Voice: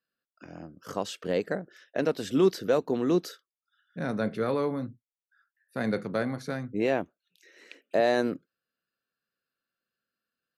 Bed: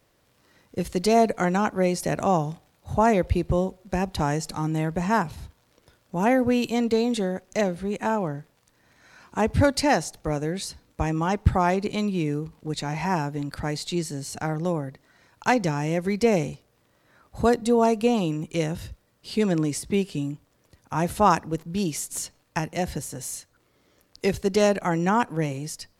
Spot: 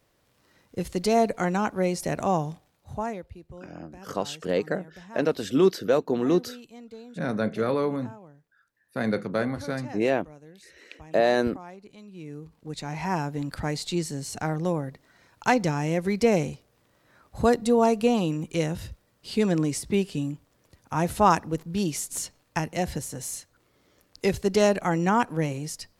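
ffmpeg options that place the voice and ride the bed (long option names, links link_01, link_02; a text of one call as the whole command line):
ffmpeg -i stem1.wav -i stem2.wav -filter_complex "[0:a]adelay=3200,volume=2.5dB[link_01];[1:a]volume=18.5dB,afade=type=out:start_time=2.46:duration=0.82:silence=0.112202,afade=type=in:start_time=12.07:duration=1.38:silence=0.0891251[link_02];[link_01][link_02]amix=inputs=2:normalize=0" out.wav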